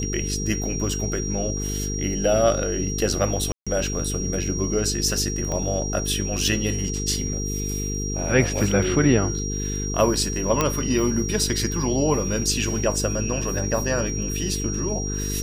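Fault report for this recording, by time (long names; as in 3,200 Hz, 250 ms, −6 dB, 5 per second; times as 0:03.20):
mains buzz 50 Hz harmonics 9 −28 dBFS
whistle 5,700 Hz −30 dBFS
0:03.52–0:03.67: drop-out 146 ms
0:05.52: click −16 dBFS
0:10.61: click −5 dBFS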